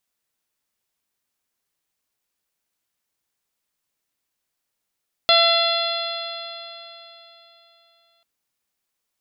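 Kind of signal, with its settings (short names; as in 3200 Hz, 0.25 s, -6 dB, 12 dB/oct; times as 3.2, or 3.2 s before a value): stretched partials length 2.94 s, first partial 673 Hz, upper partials -3/-8.5/-6/1/0/-13.5 dB, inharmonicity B 0.0016, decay 3.46 s, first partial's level -17 dB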